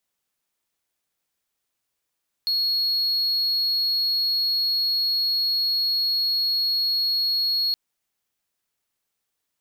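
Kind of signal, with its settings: tone triangle 4320 Hz -18 dBFS 5.27 s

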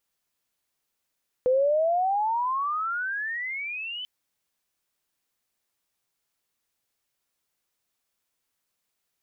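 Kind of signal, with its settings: gliding synth tone sine, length 2.59 s, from 497 Hz, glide +31.5 st, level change -14 dB, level -18 dB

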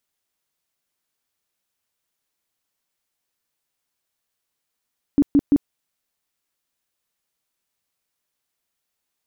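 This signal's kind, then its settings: tone bursts 285 Hz, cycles 12, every 0.17 s, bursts 3, -10.5 dBFS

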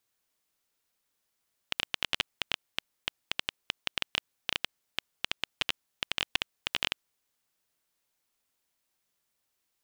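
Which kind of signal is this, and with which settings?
random clicks 9.6/s -9 dBFS 5.39 s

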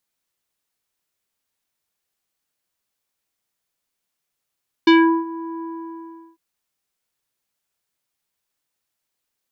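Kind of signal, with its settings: synth note square E4 24 dB/oct, low-pass 1100 Hz, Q 1.4, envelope 2 oct, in 0.23 s, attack 5.9 ms, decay 0.37 s, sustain -20 dB, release 0.75 s, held 0.75 s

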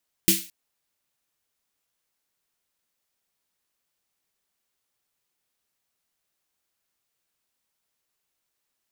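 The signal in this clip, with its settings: snare drum length 0.22 s, tones 190 Hz, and 330 Hz, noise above 2200 Hz, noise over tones 3.5 dB, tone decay 0.24 s, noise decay 0.37 s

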